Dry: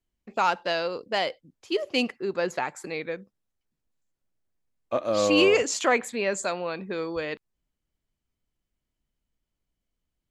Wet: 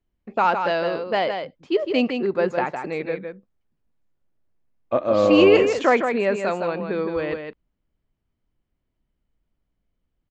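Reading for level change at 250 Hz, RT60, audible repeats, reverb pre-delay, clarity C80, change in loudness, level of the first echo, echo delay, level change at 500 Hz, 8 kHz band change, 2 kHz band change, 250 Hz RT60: +7.0 dB, none, 1, none, none, +5.0 dB, -6.5 dB, 0.16 s, +6.5 dB, under -10 dB, +2.0 dB, none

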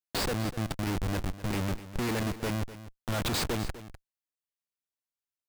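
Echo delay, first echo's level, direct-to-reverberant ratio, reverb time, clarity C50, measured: 0.25 s, -14.5 dB, none, none, none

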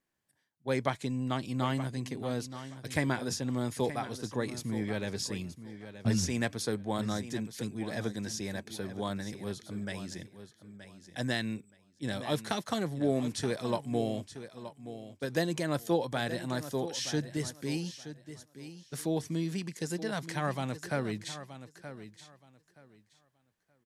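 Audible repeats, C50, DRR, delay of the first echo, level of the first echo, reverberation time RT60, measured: 2, none, none, 0.924 s, -12.5 dB, none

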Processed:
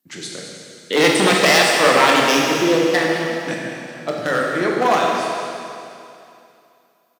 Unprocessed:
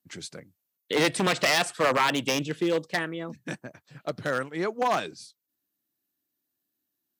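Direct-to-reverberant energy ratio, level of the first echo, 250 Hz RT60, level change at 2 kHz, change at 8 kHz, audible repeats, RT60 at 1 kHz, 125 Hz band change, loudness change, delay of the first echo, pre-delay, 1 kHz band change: -2.5 dB, -12.5 dB, 2.6 s, +11.0 dB, +10.5 dB, 1, 2.6 s, +6.5 dB, +10.0 dB, 0.214 s, 21 ms, +10.5 dB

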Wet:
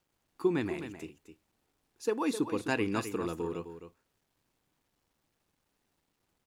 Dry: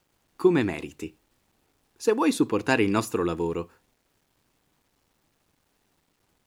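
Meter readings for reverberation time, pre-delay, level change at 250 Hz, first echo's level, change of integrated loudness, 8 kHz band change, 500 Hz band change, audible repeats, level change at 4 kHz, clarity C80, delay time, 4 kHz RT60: none, none, -8.0 dB, -10.0 dB, -8.5 dB, -8.0 dB, -8.0 dB, 1, -8.0 dB, none, 0.259 s, none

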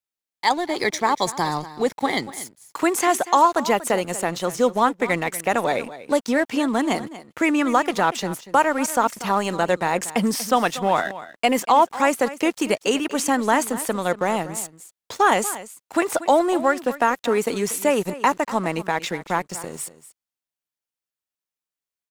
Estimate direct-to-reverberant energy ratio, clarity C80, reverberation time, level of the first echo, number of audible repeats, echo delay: none, none, none, -15.5 dB, 1, 0.238 s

